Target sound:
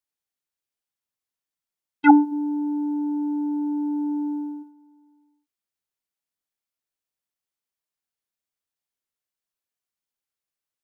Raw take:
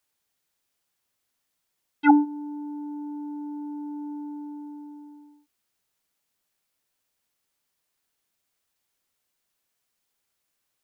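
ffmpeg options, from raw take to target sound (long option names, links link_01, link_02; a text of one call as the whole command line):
ffmpeg -i in.wav -filter_complex "[0:a]agate=range=-16dB:threshold=-37dB:ratio=16:detection=peak,asplit=3[link_01][link_02][link_03];[link_01]afade=type=out:start_time=2.31:duration=0.02[link_04];[link_02]lowshelf=frequency=410:gain=9,afade=type=in:start_time=2.31:duration=0.02,afade=type=out:start_time=4.62:duration=0.02[link_05];[link_03]afade=type=in:start_time=4.62:duration=0.02[link_06];[link_04][link_05][link_06]amix=inputs=3:normalize=0,volume=3.5dB" out.wav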